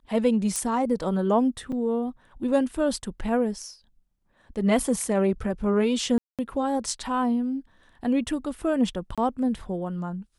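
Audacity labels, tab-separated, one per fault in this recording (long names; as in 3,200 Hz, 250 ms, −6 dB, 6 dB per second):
0.560000	0.560000	click
1.720000	1.730000	drop-out 5.1 ms
6.180000	6.390000	drop-out 207 ms
9.150000	9.180000	drop-out 26 ms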